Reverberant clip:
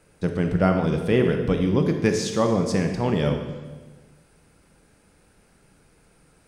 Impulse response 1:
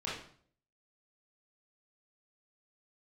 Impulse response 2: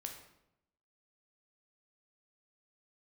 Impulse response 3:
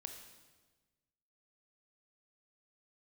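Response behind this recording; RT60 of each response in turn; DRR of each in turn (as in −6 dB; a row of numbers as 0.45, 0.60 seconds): 3; 0.55, 0.85, 1.3 seconds; −8.0, 2.5, 4.5 decibels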